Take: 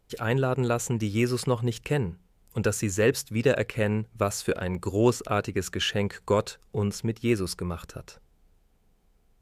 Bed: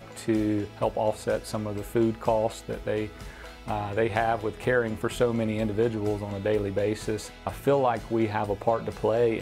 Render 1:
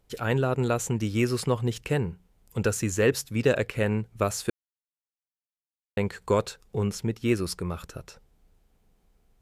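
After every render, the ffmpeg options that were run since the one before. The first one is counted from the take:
-filter_complex "[0:a]asplit=3[a][b][c];[a]atrim=end=4.5,asetpts=PTS-STARTPTS,afade=t=out:st=4.496:d=0.004:c=hsin[d];[b]atrim=start=4.5:end=5.97,asetpts=PTS-STARTPTS,volume=0[e];[c]atrim=start=5.97,asetpts=PTS-STARTPTS,afade=t=in:d=0.004:c=hsin[f];[d][e][f]concat=n=3:v=0:a=1"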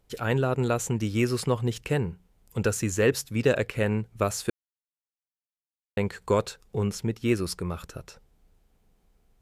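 -af anull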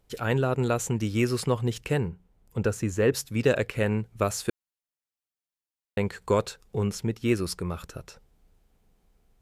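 -filter_complex "[0:a]asettb=1/sr,asplit=3[a][b][c];[a]atrim=end=2.084[d];[b]atrim=start=2.08:end=3.14,asetpts=PTS-STARTPTS,afade=t=in:d=0.004:c=qsin,afade=t=out:st=1.056:d=0.004:c=qsin,highshelf=f=2.1k:g=-8.5[e];[c]atrim=start=3.136[f];[d][e]acrossfade=d=0.004:c1=hsin:c2=qsin[g];[g][f]acrossfade=d=0.004:c1=qsin:c2=hsin"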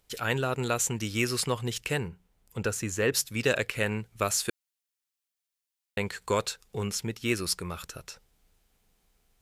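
-af "tiltshelf=f=1.2k:g=-6"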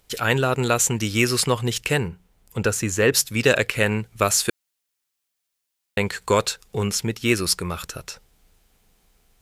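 -af "volume=8dB"

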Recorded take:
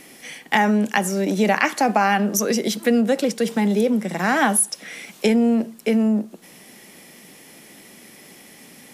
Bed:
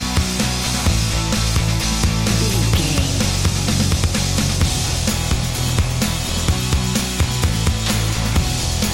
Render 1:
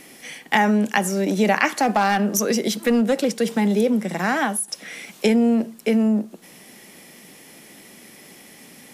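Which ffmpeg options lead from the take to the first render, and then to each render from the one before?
-filter_complex "[0:a]asettb=1/sr,asplit=3[a][b][c];[a]atrim=end=1.724[d];[b]atrim=start=1.72:end=3.34,asetpts=PTS-STARTPTS,afade=t=in:d=0.004:c=qsin,afade=t=out:st=1.616:d=0.004:c=qsin,asoftclip=type=hard:threshold=-12.5dB[e];[c]atrim=start=3.336[f];[d][e]acrossfade=d=0.004:c1=hsin:c2=qsin[g];[g][f]acrossfade=d=0.004:c1=qsin:c2=hsin,asplit=2[h][i];[h]atrim=end=4.68,asetpts=PTS-STARTPTS,afade=t=out:st=4.15:d=0.53:silence=0.334965[j];[i]atrim=start=4.68,asetpts=PTS-STARTPTS,afade=t=in:d=0.004:c=hsin:silence=0.334965[k];[j][k]concat=n=2:v=0:a=1"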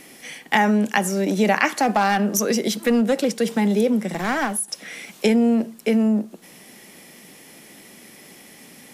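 -filter_complex "[0:a]asplit=3[a][b][c];[a]afade=t=out:st=4.11:d=0.02[d];[b]aeval=exprs='clip(val(0),-1,0.0631)':c=same,afade=t=in:st=4.11:d=0.02,afade=t=out:st=4.55:d=0.02[e];[c]afade=t=in:st=4.55:d=0.02[f];[d][e][f]amix=inputs=3:normalize=0"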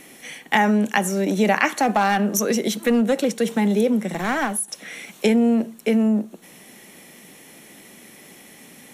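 -af "bandreject=f=4.9k:w=5.8"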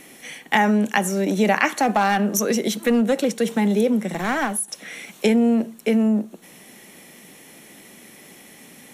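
-af anull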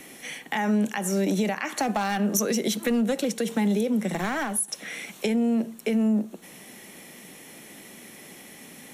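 -filter_complex "[0:a]alimiter=limit=-14dB:level=0:latency=1:release=183,acrossover=split=190|3000[a][b][c];[b]acompressor=threshold=-25dB:ratio=3[d];[a][d][c]amix=inputs=3:normalize=0"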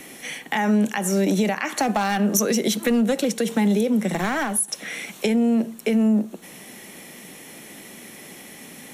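-af "volume=4dB"

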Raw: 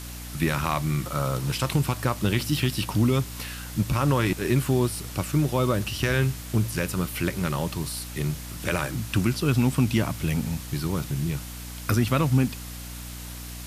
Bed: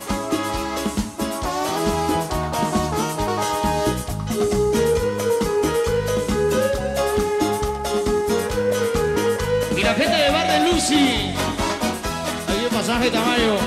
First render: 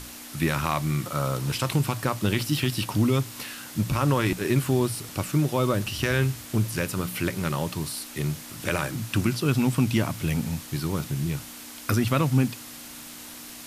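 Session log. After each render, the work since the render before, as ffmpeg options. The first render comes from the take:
-af "bandreject=f=60:t=h:w=6,bandreject=f=120:t=h:w=6,bandreject=f=180:t=h:w=6"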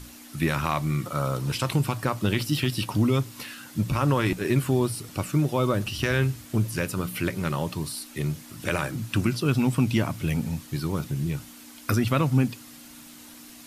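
-af "afftdn=nr=7:nf=-42"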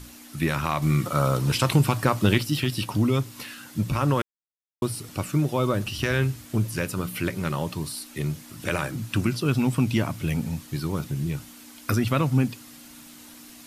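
-filter_complex "[0:a]asplit=5[a][b][c][d][e];[a]atrim=end=0.822[f];[b]atrim=start=0.818:end=2.382,asetpts=PTS-STARTPTS,volume=4.5dB[g];[c]atrim=start=2.378:end=4.22,asetpts=PTS-STARTPTS,afade=t=out:st=1.838:d=0.004:c=hsin[h];[d]atrim=start=4.22:end=4.82,asetpts=PTS-STARTPTS,volume=0[i];[e]atrim=start=4.82,asetpts=PTS-STARTPTS,afade=t=in:d=0.004:c=hsin[j];[f][g]acrossfade=d=0.004:c1=hsin:c2=hsin[k];[h][i][j]concat=n=3:v=0:a=1[l];[k][l]acrossfade=d=0.004:c1=hsin:c2=hsin"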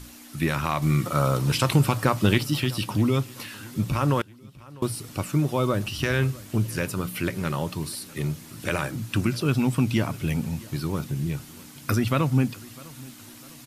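-af "aecho=1:1:652|1304|1956:0.0794|0.0357|0.0161"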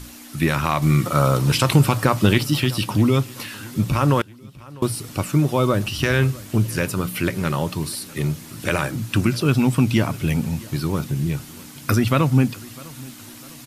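-af "volume=5dB,alimiter=limit=-3dB:level=0:latency=1"

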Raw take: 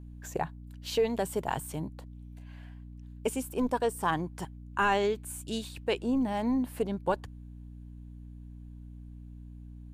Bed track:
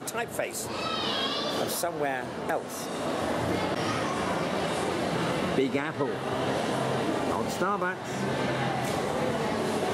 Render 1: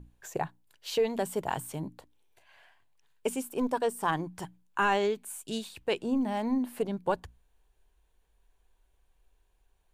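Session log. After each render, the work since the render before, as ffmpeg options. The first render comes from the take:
-af "bandreject=f=60:t=h:w=6,bandreject=f=120:t=h:w=6,bandreject=f=180:t=h:w=6,bandreject=f=240:t=h:w=6,bandreject=f=300:t=h:w=6"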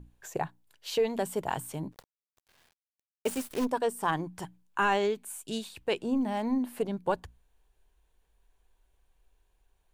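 -filter_complex "[0:a]asplit=3[a][b][c];[a]afade=t=out:st=1.91:d=0.02[d];[b]acrusher=bits=7:dc=4:mix=0:aa=0.000001,afade=t=in:st=1.91:d=0.02,afade=t=out:st=3.64:d=0.02[e];[c]afade=t=in:st=3.64:d=0.02[f];[d][e][f]amix=inputs=3:normalize=0"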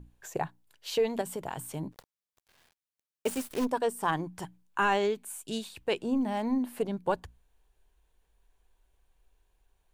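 -filter_complex "[0:a]asettb=1/sr,asplit=3[a][b][c];[a]atrim=end=1.214[d];[b]atrim=start=1.21:end=1.76,asetpts=PTS-STARTPTS,afade=t=in:d=0.004:c=qsin,afade=t=out:st=0.546:d=0.004:c=qsin,acompressor=threshold=-31dB:ratio=6:attack=3.2:release=140:knee=1:detection=peak[e];[c]atrim=start=1.756[f];[d][e]acrossfade=d=0.004:c1=hsin:c2=qsin[g];[g][f]acrossfade=d=0.004:c1=qsin:c2=hsin"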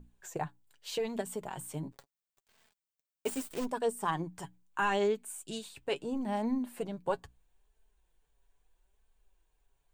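-af "aexciter=amount=1:drive=5.8:freq=7.2k,flanger=delay=4.5:depth=2.8:regen=40:speed=0.77:shape=sinusoidal"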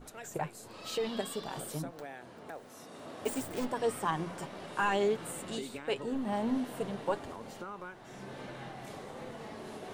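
-filter_complex "[1:a]volume=-16dB[a];[0:a][a]amix=inputs=2:normalize=0"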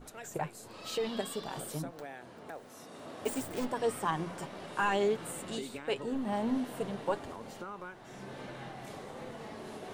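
-af anull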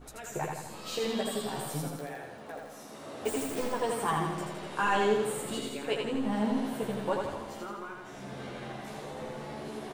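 -filter_complex "[0:a]asplit=2[a][b];[b]adelay=14,volume=-4dB[c];[a][c]amix=inputs=2:normalize=0,asplit=2[d][e];[e]aecho=0:1:82|164|246|328|410|492|574|656:0.668|0.381|0.217|0.124|0.0706|0.0402|0.0229|0.0131[f];[d][f]amix=inputs=2:normalize=0"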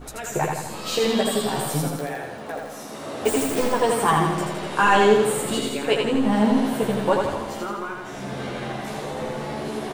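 -af "volume=10.5dB"

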